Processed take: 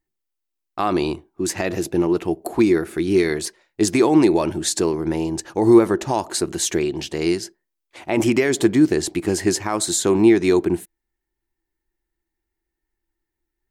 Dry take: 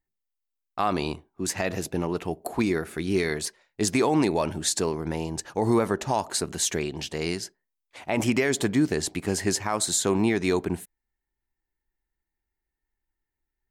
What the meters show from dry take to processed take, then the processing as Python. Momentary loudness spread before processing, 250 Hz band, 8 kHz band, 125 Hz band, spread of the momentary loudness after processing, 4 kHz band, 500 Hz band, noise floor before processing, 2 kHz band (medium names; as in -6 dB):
8 LU, +8.5 dB, +3.0 dB, +3.0 dB, 10 LU, +3.0 dB, +8.0 dB, -85 dBFS, +3.0 dB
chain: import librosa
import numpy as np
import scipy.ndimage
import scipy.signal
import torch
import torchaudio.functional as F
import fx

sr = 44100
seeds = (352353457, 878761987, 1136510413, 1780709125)

y = fx.peak_eq(x, sr, hz=340.0, db=12.0, octaves=0.27)
y = y * 10.0 ** (3.0 / 20.0)